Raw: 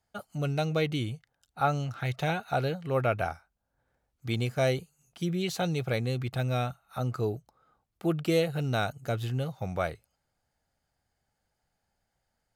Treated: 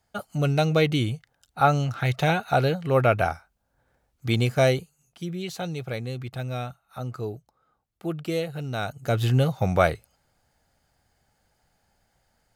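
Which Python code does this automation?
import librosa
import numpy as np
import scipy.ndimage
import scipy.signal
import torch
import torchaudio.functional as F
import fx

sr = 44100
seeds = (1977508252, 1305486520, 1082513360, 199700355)

y = fx.gain(x, sr, db=fx.line((4.6, 7.0), (5.23, -2.0), (8.74, -2.0), (9.29, 10.5)))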